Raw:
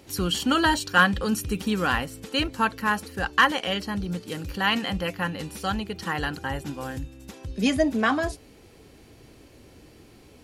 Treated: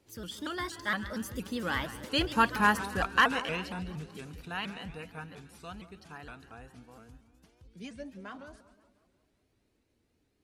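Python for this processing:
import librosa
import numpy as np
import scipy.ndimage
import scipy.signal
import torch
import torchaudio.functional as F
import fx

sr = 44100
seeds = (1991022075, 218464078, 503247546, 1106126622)

y = fx.doppler_pass(x, sr, speed_mps=32, closest_m=13.0, pass_at_s=2.61)
y = fx.echo_split(y, sr, split_hz=1200.0, low_ms=181, high_ms=137, feedback_pct=52, wet_db=-14.0)
y = fx.vibrato_shape(y, sr, shape='saw_up', rate_hz=4.3, depth_cents=160.0)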